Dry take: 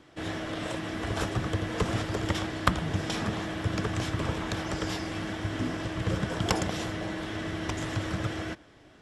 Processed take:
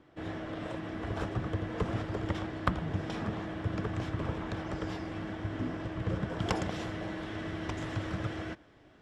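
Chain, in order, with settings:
low-pass filter 1,500 Hz 6 dB per octave, from 0:06.39 3,000 Hz
level −3.5 dB

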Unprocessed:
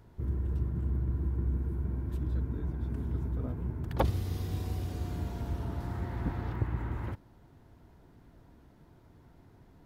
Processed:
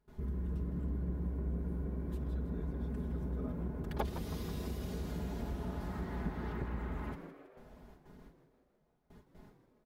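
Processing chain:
noise gate with hold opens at −47 dBFS
comb filter 4.8 ms, depth 89%
downward compressor 2 to 1, threshold −39 dBFS, peak gain reduction 10 dB
on a send: echo with shifted repeats 161 ms, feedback 55%, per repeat +110 Hz, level −11.5 dB

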